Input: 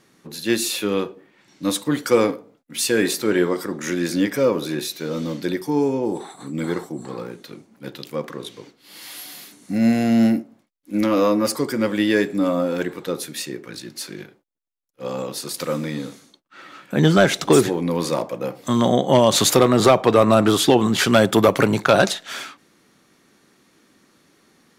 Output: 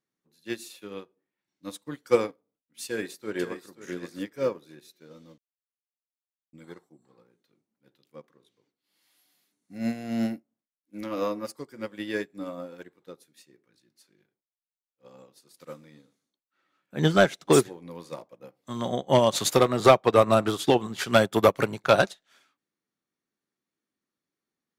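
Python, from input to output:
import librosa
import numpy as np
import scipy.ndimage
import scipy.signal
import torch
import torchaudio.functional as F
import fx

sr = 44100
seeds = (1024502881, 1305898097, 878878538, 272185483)

y = fx.echo_throw(x, sr, start_s=2.86, length_s=0.8, ms=530, feedback_pct=25, wet_db=-6.0)
y = fx.edit(y, sr, fx.silence(start_s=5.38, length_s=1.15), tone=tone)
y = fx.dynamic_eq(y, sr, hz=260.0, q=1.3, threshold_db=-27.0, ratio=4.0, max_db=-3)
y = fx.upward_expand(y, sr, threshold_db=-32.0, expansion=2.5)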